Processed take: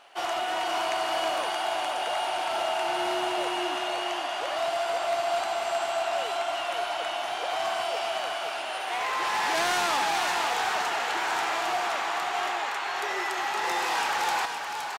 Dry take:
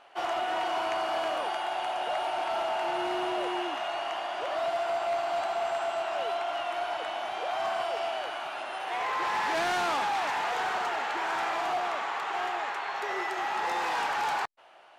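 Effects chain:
high-shelf EQ 3,500 Hz +11 dB
single-tap delay 516 ms −5.5 dB

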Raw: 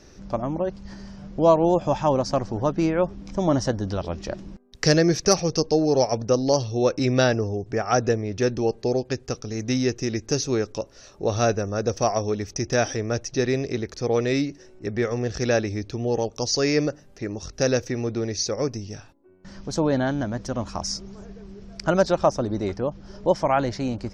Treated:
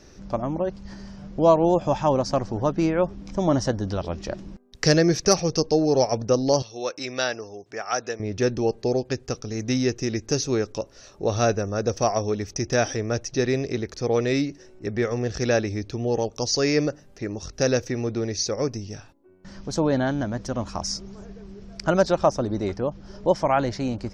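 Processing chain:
0:06.62–0:08.20: high-pass filter 1,200 Hz 6 dB per octave

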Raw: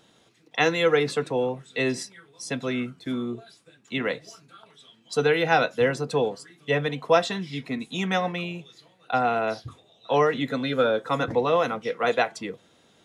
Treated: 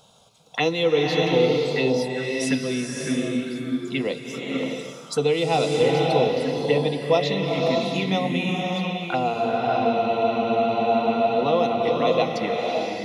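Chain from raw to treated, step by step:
mains-hum notches 60/120/180/240 Hz
phaser swept by the level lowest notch 310 Hz, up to 1,600 Hz, full sweep at −24 dBFS
in parallel at +3 dB: downward compressor, threshold −37 dBFS, peak gain reduction 19.5 dB
on the sum: frozen spectrum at 0:09.36, 2.03 s
slow-attack reverb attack 620 ms, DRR −0.5 dB

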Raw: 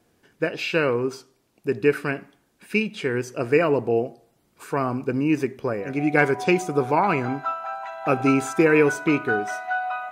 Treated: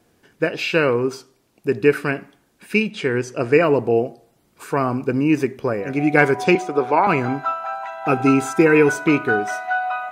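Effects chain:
0:02.90–0:03.63: low-pass filter 9,000 Hz 12 dB per octave
0:06.55–0:07.07: three-way crossover with the lows and the highs turned down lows −13 dB, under 270 Hz, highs −13 dB, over 5,000 Hz
0:07.86–0:08.89: notch comb filter 580 Hz
level +4 dB

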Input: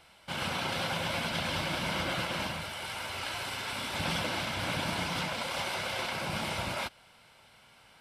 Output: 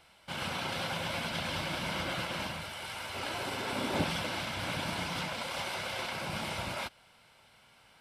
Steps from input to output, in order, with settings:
0:03.14–0:04.03: parametric band 340 Hz +7.5 dB → +15 dB 2.4 octaves
level −2.5 dB

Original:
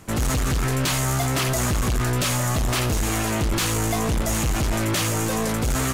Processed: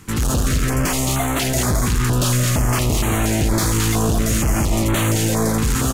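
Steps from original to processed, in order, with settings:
on a send: single-tap delay 218 ms −5.5 dB
on the sum: notch on a step sequencer 4.3 Hz 640–5,100 Hz
level +3.5 dB

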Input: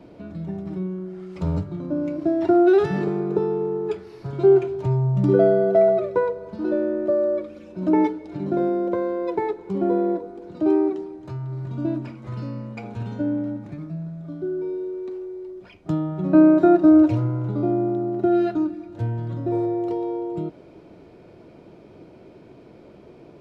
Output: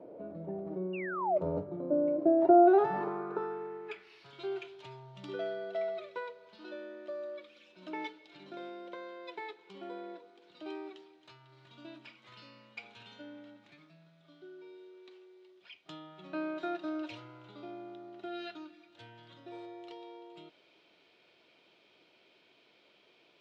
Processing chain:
sound drawn into the spectrogram fall, 0:00.93–0:01.38, 570–2,900 Hz −27 dBFS
band-pass filter sweep 540 Hz → 3,300 Hz, 0:02.38–0:04.32
level +3 dB

